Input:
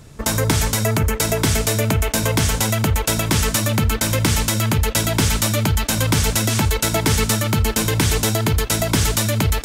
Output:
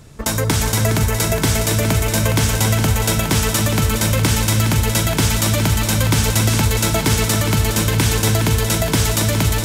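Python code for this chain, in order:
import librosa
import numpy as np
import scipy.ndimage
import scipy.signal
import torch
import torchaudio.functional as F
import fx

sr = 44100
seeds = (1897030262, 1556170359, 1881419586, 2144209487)

y = fx.echo_heads(x, sr, ms=138, heads='second and third', feedback_pct=48, wet_db=-8.5)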